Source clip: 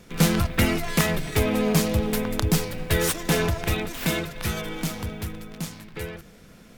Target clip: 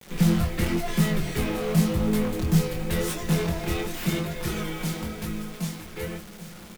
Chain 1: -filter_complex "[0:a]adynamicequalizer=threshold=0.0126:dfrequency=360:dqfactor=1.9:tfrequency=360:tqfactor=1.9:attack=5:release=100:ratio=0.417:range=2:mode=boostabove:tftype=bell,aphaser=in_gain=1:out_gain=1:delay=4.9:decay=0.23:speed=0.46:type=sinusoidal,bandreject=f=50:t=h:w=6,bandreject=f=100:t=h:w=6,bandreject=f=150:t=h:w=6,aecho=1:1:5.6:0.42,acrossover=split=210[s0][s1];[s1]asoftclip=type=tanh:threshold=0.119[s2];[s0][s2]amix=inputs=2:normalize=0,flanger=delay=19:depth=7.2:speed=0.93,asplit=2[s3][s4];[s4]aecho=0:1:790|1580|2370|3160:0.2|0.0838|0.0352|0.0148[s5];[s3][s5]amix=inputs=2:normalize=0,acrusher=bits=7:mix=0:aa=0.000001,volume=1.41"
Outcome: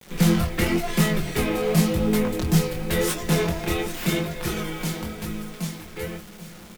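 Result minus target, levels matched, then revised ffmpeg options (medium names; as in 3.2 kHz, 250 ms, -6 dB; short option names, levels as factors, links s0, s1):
saturation: distortion -8 dB
-filter_complex "[0:a]adynamicequalizer=threshold=0.0126:dfrequency=360:dqfactor=1.9:tfrequency=360:tqfactor=1.9:attack=5:release=100:ratio=0.417:range=2:mode=boostabove:tftype=bell,aphaser=in_gain=1:out_gain=1:delay=4.9:decay=0.23:speed=0.46:type=sinusoidal,bandreject=f=50:t=h:w=6,bandreject=f=100:t=h:w=6,bandreject=f=150:t=h:w=6,aecho=1:1:5.6:0.42,acrossover=split=210[s0][s1];[s1]asoftclip=type=tanh:threshold=0.0398[s2];[s0][s2]amix=inputs=2:normalize=0,flanger=delay=19:depth=7.2:speed=0.93,asplit=2[s3][s4];[s4]aecho=0:1:790|1580|2370|3160:0.2|0.0838|0.0352|0.0148[s5];[s3][s5]amix=inputs=2:normalize=0,acrusher=bits=7:mix=0:aa=0.000001,volume=1.41"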